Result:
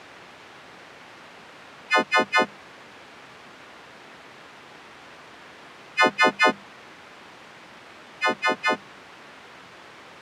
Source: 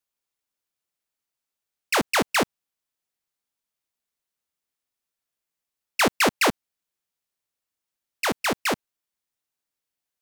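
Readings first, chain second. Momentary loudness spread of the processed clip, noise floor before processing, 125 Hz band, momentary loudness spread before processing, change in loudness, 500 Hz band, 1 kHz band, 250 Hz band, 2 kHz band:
11 LU, under -85 dBFS, -5.5 dB, 9 LU, +2.0 dB, +0.5 dB, +3.0 dB, -2.0 dB, +4.5 dB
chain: partials quantised in pitch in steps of 3 st; word length cut 6-bit, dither triangular; band-pass 120–2100 Hz; hum notches 50/100/150/200 Hz

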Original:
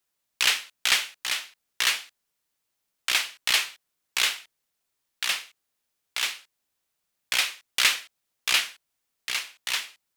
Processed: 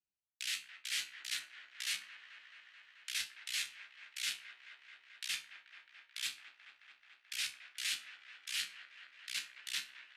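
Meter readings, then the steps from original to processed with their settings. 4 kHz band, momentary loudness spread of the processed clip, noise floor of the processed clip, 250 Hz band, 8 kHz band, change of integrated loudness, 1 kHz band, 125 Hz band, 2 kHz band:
-14.0 dB, 18 LU, -71 dBFS, under -15 dB, -12.5 dB, -14.5 dB, -22.5 dB, no reading, -15.5 dB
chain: local Wiener filter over 25 samples; Chebyshev low-pass 11 kHz, order 2; amplifier tone stack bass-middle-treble 5-5-5; reverse; compression 16:1, threshold -44 dBFS, peak gain reduction 20.5 dB; reverse; high-order bell 730 Hz -12.5 dB; feedback comb 67 Hz, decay 0.26 s, harmonics all, mix 80%; on a send: feedback echo behind a band-pass 217 ms, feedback 81%, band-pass 880 Hz, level -5.5 dB; on the sum: trim +14.5 dB; AAC 64 kbps 32 kHz

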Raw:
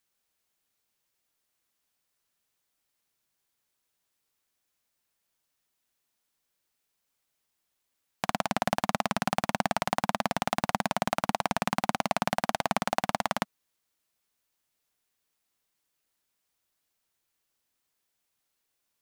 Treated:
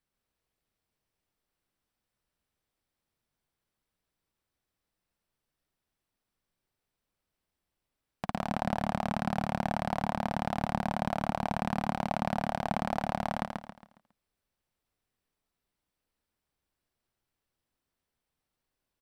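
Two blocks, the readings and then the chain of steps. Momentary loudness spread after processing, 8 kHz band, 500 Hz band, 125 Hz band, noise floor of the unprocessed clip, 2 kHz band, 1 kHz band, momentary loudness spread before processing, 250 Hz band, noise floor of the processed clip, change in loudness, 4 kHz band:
4 LU, -13.5 dB, -2.5 dB, +2.5 dB, -80 dBFS, -6.5 dB, -3.5 dB, 2 LU, +0.5 dB, under -85 dBFS, -3.0 dB, -9.5 dB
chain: in parallel at -0.5 dB: peak limiter -16 dBFS, peak gain reduction 9.5 dB; on the sum: tilt EQ -2.5 dB/octave; band-stop 6.7 kHz, Q 8.2; feedback delay 137 ms, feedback 37%, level -4 dB; trim -9 dB

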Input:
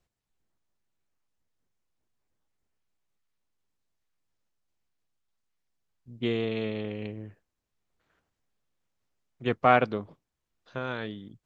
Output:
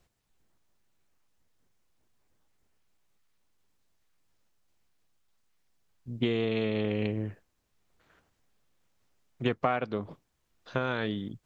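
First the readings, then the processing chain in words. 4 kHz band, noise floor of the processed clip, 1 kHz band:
+1.0 dB, -76 dBFS, -7.0 dB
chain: compression 10:1, threshold -32 dBFS, peak gain reduction 18 dB; trim +8 dB

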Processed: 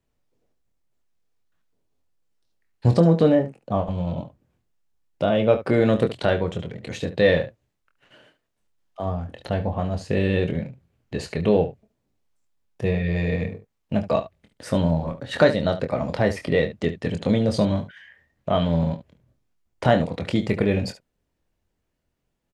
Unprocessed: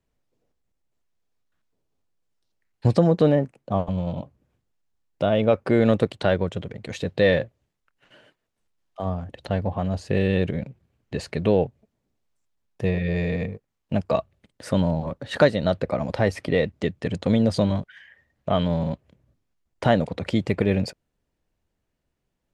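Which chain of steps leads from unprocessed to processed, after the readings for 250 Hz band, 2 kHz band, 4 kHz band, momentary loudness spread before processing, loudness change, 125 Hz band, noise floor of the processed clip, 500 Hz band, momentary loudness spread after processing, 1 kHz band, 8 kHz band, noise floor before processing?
+0.5 dB, +1.0 dB, +1.0 dB, 13 LU, +1.0 dB, +1.0 dB, -76 dBFS, +1.0 dB, 13 LU, +1.0 dB, no reading, -78 dBFS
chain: early reflections 24 ms -7 dB, 72 ms -13.5 dB

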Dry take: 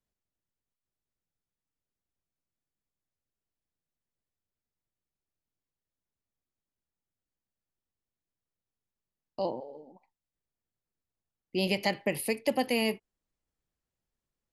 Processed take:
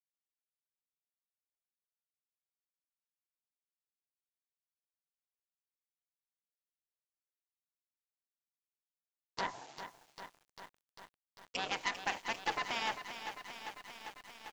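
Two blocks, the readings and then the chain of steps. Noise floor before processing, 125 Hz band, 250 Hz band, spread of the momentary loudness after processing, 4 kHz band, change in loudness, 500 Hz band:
under -85 dBFS, -16.5 dB, -18.0 dB, 20 LU, -4.0 dB, -9.0 dB, -15.5 dB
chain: low-pass that closes with the level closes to 1 kHz, closed at -30 dBFS; spectral gate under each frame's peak -15 dB weak; dynamic bell 920 Hz, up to +5 dB, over -58 dBFS, Q 1.2; Chebyshev shaper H 2 -11 dB, 6 -15 dB, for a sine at -28.5 dBFS; word length cut 10-bit, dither none; tilt EQ +2.5 dB/octave; resampled via 16 kHz; bit-crushed delay 397 ms, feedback 80%, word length 10-bit, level -9.5 dB; trim +4.5 dB

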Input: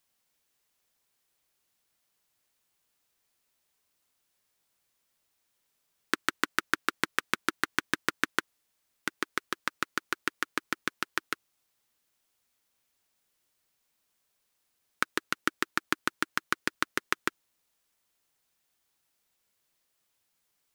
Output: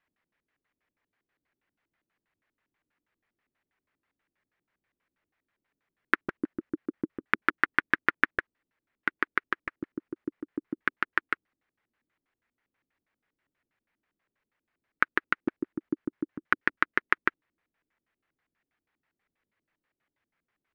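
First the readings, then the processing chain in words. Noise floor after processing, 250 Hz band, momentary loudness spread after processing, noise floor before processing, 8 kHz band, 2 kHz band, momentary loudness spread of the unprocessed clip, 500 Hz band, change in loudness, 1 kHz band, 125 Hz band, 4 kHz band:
under -85 dBFS, +4.0 dB, 13 LU, -77 dBFS, under -25 dB, +3.5 dB, 6 LU, +1.0 dB, +2.5 dB, +1.0 dB, +1.5 dB, -10.0 dB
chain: LFO low-pass square 6.2 Hz 300–1900 Hz

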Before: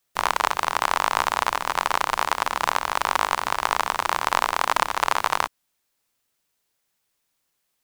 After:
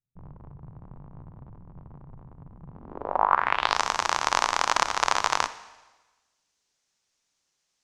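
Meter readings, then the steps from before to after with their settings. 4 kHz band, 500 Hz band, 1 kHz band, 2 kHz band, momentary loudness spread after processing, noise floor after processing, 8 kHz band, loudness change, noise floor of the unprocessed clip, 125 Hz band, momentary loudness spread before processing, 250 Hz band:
-3.0 dB, -4.5 dB, -4.5 dB, -5.0 dB, 8 LU, -78 dBFS, -2.0 dB, -1.5 dB, -75 dBFS, +1.0 dB, 2 LU, -3.5 dB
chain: Schroeder reverb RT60 1.2 s, DRR 14 dB; low-pass sweep 140 Hz -> 6.2 kHz, 2.70–3.80 s; trim -2.5 dB

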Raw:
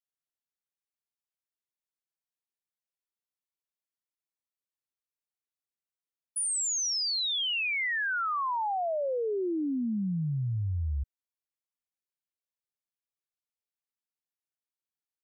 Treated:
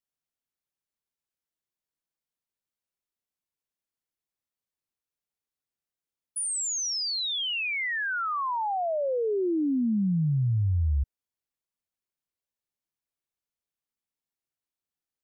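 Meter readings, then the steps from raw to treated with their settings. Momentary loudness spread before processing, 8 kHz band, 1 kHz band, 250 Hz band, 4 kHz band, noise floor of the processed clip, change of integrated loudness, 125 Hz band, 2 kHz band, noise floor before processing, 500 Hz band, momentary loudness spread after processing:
6 LU, 0.0 dB, +1.5 dB, +5.0 dB, 0.0 dB, under -85 dBFS, +2.0 dB, +5.5 dB, +0.5 dB, under -85 dBFS, +3.0 dB, 3 LU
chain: bass shelf 490 Hz +6 dB

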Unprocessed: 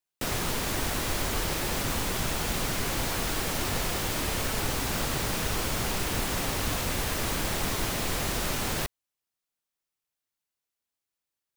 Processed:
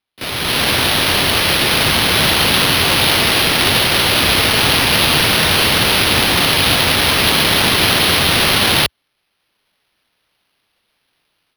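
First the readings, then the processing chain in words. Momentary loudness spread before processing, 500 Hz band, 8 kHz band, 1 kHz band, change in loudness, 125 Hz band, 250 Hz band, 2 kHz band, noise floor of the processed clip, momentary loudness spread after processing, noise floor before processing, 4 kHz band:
0 LU, +14.0 dB, +12.5 dB, +15.5 dB, +17.5 dB, +12.0 dB, +13.5 dB, +19.0 dB, -69 dBFS, 2 LU, under -85 dBFS, +22.0 dB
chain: high-pass 71 Hz 24 dB/octave; peaking EQ 4.3 kHz +13.5 dB 0.98 oct; level rider gain up to 15 dB; pre-echo 34 ms -15.5 dB; careless resampling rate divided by 6×, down none, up hold; trim +1 dB

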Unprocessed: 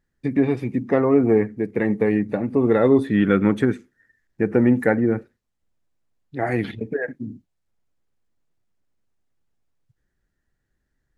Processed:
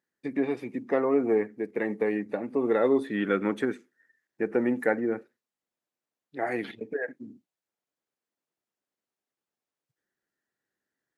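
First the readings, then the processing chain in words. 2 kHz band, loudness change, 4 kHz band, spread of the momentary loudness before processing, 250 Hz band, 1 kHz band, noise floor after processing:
-5.0 dB, -8.0 dB, no reading, 11 LU, -10.0 dB, -5.0 dB, under -85 dBFS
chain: high-pass 310 Hz 12 dB/octave; trim -5 dB

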